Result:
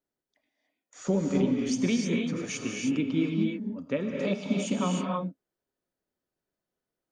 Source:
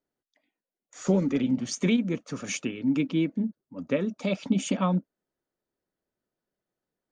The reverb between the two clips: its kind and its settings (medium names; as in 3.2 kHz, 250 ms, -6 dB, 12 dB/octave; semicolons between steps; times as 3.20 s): gated-style reverb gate 340 ms rising, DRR 0 dB; trim -3.5 dB